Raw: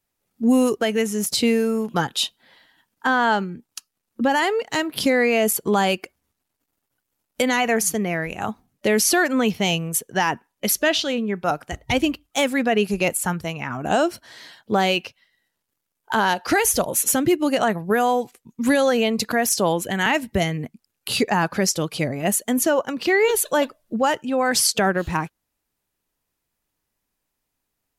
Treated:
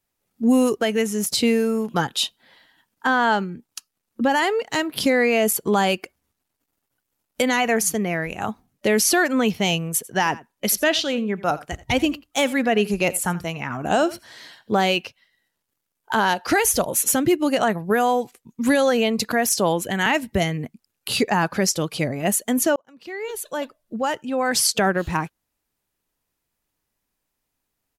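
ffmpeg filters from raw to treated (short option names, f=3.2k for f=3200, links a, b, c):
-filter_complex "[0:a]asplit=3[a][b][c];[a]afade=t=out:st=10.03:d=0.02[d];[b]aecho=1:1:85:0.112,afade=t=in:st=10.03:d=0.02,afade=t=out:st=14.8:d=0.02[e];[c]afade=t=in:st=14.8:d=0.02[f];[d][e][f]amix=inputs=3:normalize=0,asplit=2[g][h];[g]atrim=end=22.76,asetpts=PTS-STARTPTS,afade=t=out:st=22.756:d=0.004:c=hsin[i];[h]atrim=start=22.76,asetpts=PTS-STARTPTS,afade=t=in:d=2.01[j];[i][j]concat=n=2:v=0:a=1"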